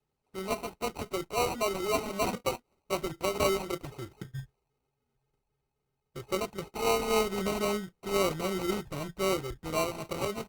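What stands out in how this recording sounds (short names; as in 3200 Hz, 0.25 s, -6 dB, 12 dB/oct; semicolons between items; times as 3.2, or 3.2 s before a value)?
a buzz of ramps at a fixed pitch in blocks of 8 samples; phasing stages 12, 3.8 Hz, lowest notch 570–1700 Hz; aliases and images of a low sample rate 1700 Hz, jitter 0%; Opus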